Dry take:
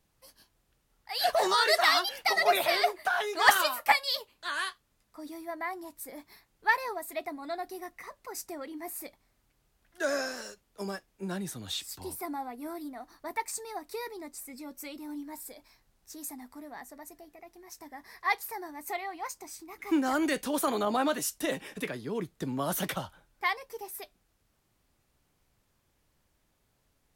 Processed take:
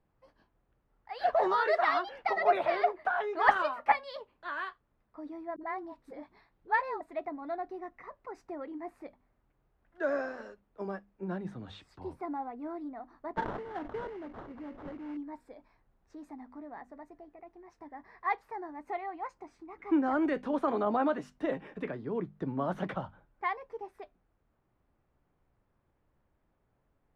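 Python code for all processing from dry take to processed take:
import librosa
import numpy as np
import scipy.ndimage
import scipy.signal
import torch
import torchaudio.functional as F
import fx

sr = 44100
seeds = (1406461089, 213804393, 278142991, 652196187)

y = fx.chain(x, sr, fx.peak_eq(hz=4000.0, db=6.0, octaves=0.78),
    fx.dispersion(late='highs', ms=54.0, hz=350.0), at=(5.56, 7.01))
y = fx.chain(y, sr, fx.lowpass(hz=10000.0, slope=24),
    fx.sample_hold(seeds[0], rate_hz=2500.0, jitter_pct=20),
    fx.sustainer(db_per_s=76.0), at=(13.35, 15.17))
y = scipy.signal.sosfilt(scipy.signal.butter(2, 1400.0, 'lowpass', fs=sr, output='sos'), y)
y = fx.hum_notches(y, sr, base_hz=50, count=5)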